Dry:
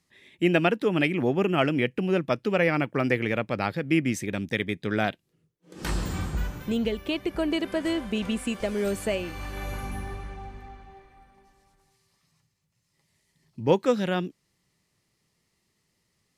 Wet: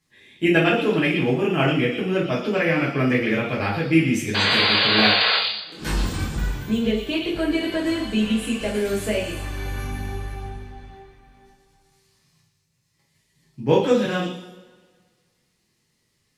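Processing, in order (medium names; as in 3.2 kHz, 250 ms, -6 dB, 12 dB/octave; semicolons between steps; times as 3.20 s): painted sound noise, 4.34–5.37 s, 410–4900 Hz -23 dBFS; repeats whose band climbs or falls 117 ms, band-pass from 3.7 kHz, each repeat 0.7 oct, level -3 dB; in parallel at +0.5 dB: level held to a coarse grid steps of 10 dB; on the sum: two-slope reverb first 0.43 s, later 1.7 s, from -19 dB, DRR -6 dB; trim -7 dB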